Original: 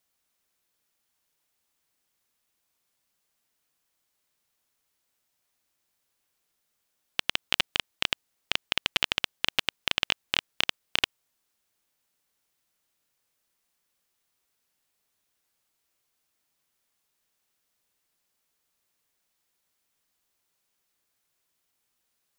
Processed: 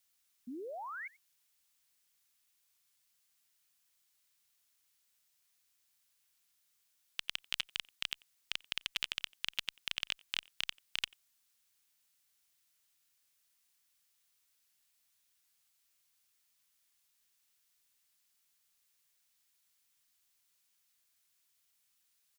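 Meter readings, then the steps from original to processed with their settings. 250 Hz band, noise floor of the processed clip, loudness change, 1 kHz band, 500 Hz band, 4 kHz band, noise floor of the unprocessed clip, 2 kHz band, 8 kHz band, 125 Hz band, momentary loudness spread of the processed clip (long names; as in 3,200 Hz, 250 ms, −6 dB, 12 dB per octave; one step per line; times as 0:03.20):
−7.0 dB, −76 dBFS, −11.0 dB, −10.5 dB, −7.5 dB, −10.0 dB, −78 dBFS, −11.0 dB, −8.5 dB, −17.5 dB, 8 LU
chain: guitar amp tone stack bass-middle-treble 5-5-5
brickwall limiter −24 dBFS, peak gain reduction 10.5 dB
sound drawn into the spectrogram rise, 0:00.47–0:01.08, 230–2,300 Hz −51 dBFS
far-end echo of a speakerphone 90 ms, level −22 dB
level +8 dB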